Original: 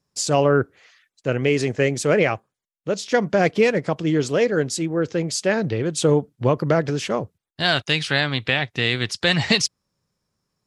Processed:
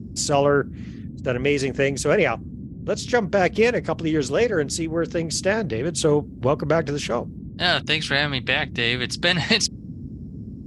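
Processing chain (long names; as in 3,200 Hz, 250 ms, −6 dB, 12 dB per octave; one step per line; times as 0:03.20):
low-shelf EQ 190 Hz −6.5 dB
noise in a band 54–260 Hz −35 dBFS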